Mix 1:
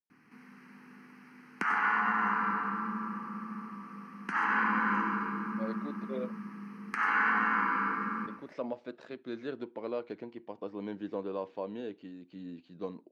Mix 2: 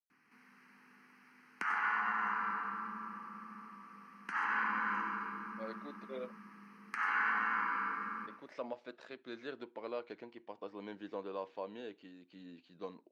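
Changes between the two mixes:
background −4.0 dB
master: add low-shelf EQ 460 Hz −12 dB

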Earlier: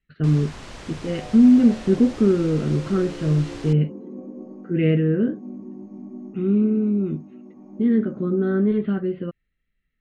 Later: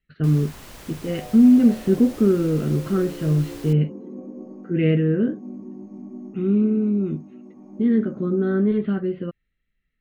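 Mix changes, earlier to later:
first sound −4.0 dB
master: remove Bessel low-pass filter 5,900 Hz, order 6

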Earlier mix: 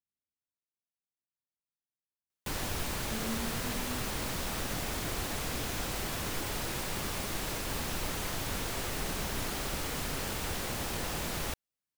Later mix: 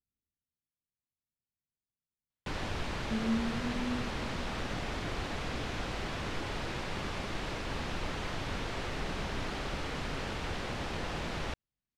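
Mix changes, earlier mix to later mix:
speech: add spectral tilt −3.5 dB per octave
master: add low-pass filter 3,800 Hz 12 dB per octave

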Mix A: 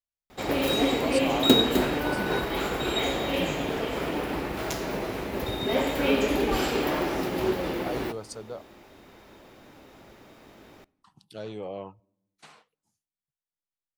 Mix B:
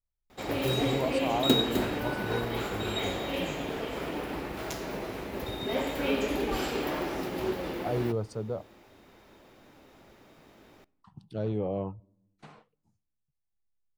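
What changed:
speech: add spectral tilt −4 dB per octave
background −5.0 dB

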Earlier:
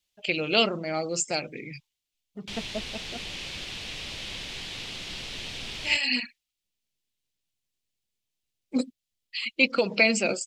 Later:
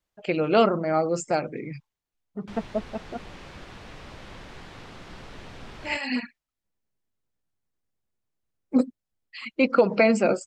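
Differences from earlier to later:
speech +5.5 dB
master: add high shelf with overshoot 2,000 Hz −13 dB, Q 1.5

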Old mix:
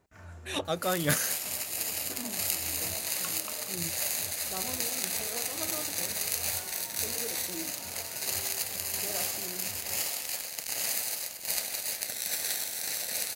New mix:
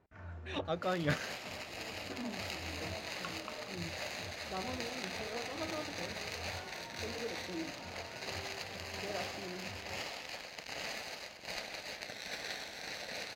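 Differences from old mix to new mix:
speech −4.0 dB
master: add high-frequency loss of the air 220 metres

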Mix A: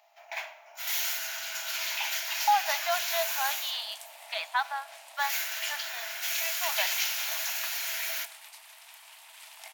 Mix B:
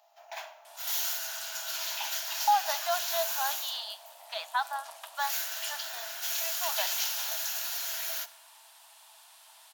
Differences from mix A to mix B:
second sound: entry −2.60 s
master: add parametric band 2,200 Hz −11 dB 0.61 octaves

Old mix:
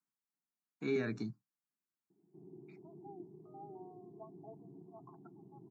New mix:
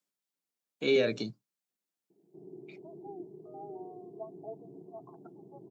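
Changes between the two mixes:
speech: add high-shelf EQ 2,700 Hz +9 dB
master: remove phaser with its sweep stopped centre 1,300 Hz, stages 4

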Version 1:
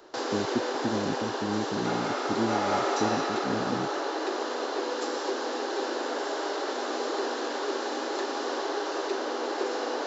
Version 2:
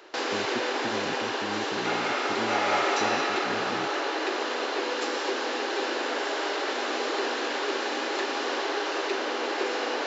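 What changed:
speech −7.0 dB
master: add parametric band 2,400 Hz +11 dB 1.1 octaves

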